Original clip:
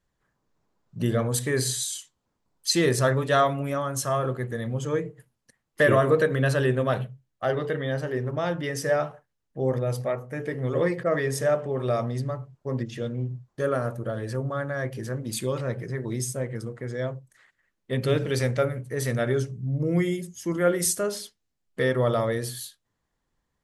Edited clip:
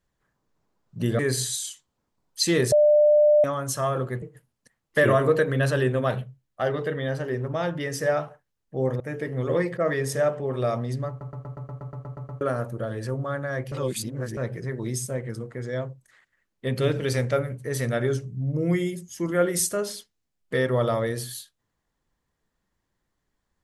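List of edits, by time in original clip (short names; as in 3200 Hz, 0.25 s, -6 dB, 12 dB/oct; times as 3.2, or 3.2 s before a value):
1.19–1.47 cut
3–3.72 bleep 597 Hz -13.5 dBFS
4.5–5.05 cut
9.83–10.26 cut
12.35 stutter in place 0.12 s, 11 plays
14.98–15.63 reverse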